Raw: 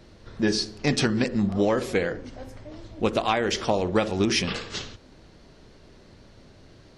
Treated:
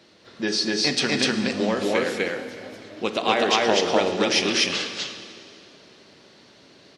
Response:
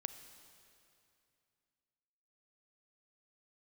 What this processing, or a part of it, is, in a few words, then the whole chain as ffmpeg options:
stadium PA: -filter_complex "[0:a]asettb=1/sr,asplit=3[link_01][link_02][link_03];[link_01]atrim=end=3.224[link_04];[link_02]atrim=start=3.22:end=3.85,asetpts=PTS-STARTPTS,afade=type=in:duration=0.004:curve=qsin,afade=type=out:start_time=0.626:duration=0.004:curve=qsin,equalizer=frequency=400:width_type=o:width=2.6:gain=4[link_05];[link_03]atrim=start=3.846[link_06];[link_04][link_05]acrossfade=duration=0.004:curve1=hsin:curve2=qsin[link_07];[link_07][link_06]acrossfade=duration=0.004:curve1=qsin:curve2=hsin,highpass=210,equalizer=frequency=3500:width_type=o:width=2:gain=7,aecho=1:1:215.7|247.8:0.251|1[link_08];[1:a]atrim=start_sample=2205[link_09];[link_08][link_09]afir=irnorm=-1:irlink=0"

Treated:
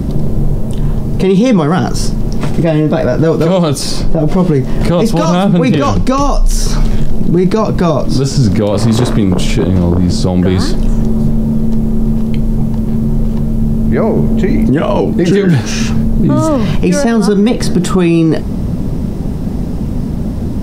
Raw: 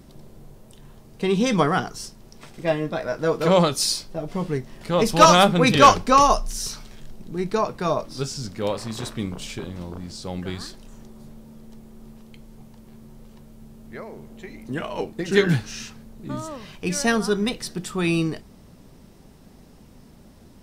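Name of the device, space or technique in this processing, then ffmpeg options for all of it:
mastering chain: -filter_complex "[0:a]equalizer=frequency=410:width_type=o:width=0.77:gain=-2,acrossover=split=310|2400[link_01][link_02][link_03];[link_01]acompressor=threshold=-38dB:ratio=4[link_04];[link_02]acompressor=threshold=-31dB:ratio=4[link_05];[link_03]acompressor=threshold=-36dB:ratio=4[link_06];[link_04][link_05][link_06]amix=inputs=3:normalize=0,acompressor=threshold=-33dB:ratio=2.5,tiltshelf=frequency=710:gain=9,alimiter=level_in=26.5dB:limit=-1dB:release=50:level=0:latency=1,volume=-1dB"

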